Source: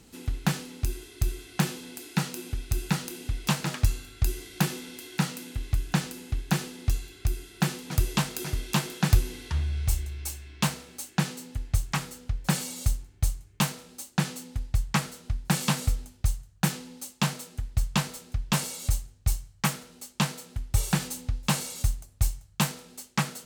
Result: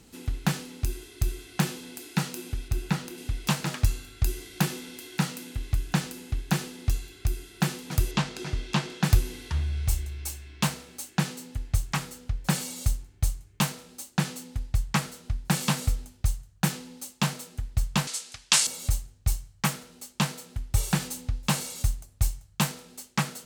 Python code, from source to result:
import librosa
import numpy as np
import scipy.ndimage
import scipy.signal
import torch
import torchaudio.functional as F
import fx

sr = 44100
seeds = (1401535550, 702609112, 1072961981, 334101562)

y = fx.high_shelf(x, sr, hz=4400.0, db=-7.5, at=(2.68, 3.18))
y = fx.lowpass(y, sr, hz=5500.0, slope=12, at=(8.11, 9.03))
y = fx.weighting(y, sr, curve='ITU-R 468', at=(18.07, 18.67))